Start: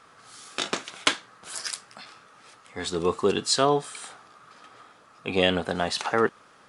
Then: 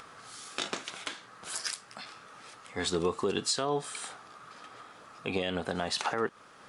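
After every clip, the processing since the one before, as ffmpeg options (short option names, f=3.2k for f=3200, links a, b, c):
-af "acompressor=threshold=-24dB:ratio=2.5,alimiter=limit=-18dB:level=0:latency=1:release=167,acompressor=mode=upward:threshold=-45dB:ratio=2.5"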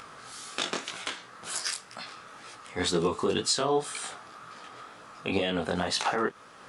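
-af "flanger=delay=17:depth=6.5:speed=2,volume=6.5dB"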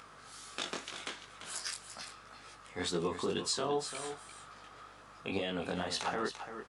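-af "aeval=exprs='val(0)+0.00141*(sin(2*PI*50*n/s)+sin(2*PI*2*50*n/s)/2+sin(2*PI*3*50*n/s)/3+sin(2*PI*4*50*n/s)/4+sin(2*PI*5*50*n/s)/5)':c=same,highpass=63,aecho=1:1:342:0.335,volume=-7.5dB"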